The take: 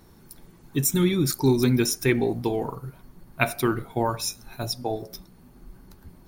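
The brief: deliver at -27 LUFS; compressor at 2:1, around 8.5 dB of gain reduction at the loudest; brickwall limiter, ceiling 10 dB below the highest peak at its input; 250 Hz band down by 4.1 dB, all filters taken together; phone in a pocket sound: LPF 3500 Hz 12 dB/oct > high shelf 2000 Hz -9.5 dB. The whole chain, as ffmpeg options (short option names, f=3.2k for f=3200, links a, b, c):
-af "equalizer=f=250:t=o:g=-5.5,acompressor=threshold=-33dB:ratio=2,alimiter=limit=-23.5dB:level=0:latency=1,lowpass=3.5k,highshelf=f=2k:g=-9.5,volume=10dB"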